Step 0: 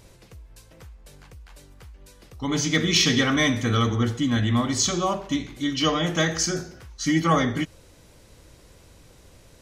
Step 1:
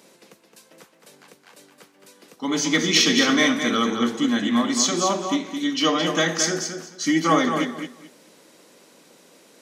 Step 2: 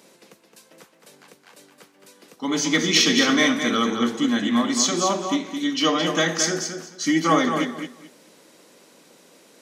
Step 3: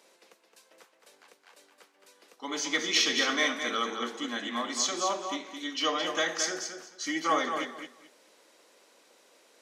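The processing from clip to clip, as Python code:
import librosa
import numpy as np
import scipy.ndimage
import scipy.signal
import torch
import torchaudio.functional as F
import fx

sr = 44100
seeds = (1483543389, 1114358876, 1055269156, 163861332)

y1 = scipy.signal.sosfilt(scipy.signal.butter(6, 190.0, 'highpass', fs=sr, output='sos'), x)
y1 = fx.echo_feedback(y1, sr, ms=217, feedback_pct=19, wet_db=-7.0)
y1 = F.gain(torch.from_numpy(y1), 2.0).numpy()
y2 = y1
y3 = scipy.signal.sosfilt(scipy.signal.butter(2, 460.0, 'highpass', fs=sr, output='sos'), y2)
y3 = fx.high_shelf(y3, sr, hz=8800.0, db=-6.5)
y3 = F.gain(torch.from_numpy(y3), -6.0).numpy()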